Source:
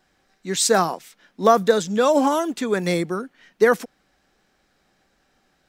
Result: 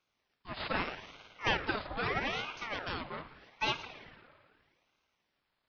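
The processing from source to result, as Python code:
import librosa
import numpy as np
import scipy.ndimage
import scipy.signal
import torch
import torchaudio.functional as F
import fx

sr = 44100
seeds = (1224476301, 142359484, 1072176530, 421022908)

y = fx.rev_spring(x, sr, rt60_s=1.9, pass_ms=(54,), chirp_ms=75, drr_db=10.5)
y = np.abs(y)
y = fx.brickwall_bandpass(y, sr, low_hz=170.0, high_hz=4800.0)
y = fx.ring_lfo(y, sr, carrier_hz=1100.0, swing_pct=70, hz=0.8)
y = y * 10.0 ** (-8.5 / 20.0)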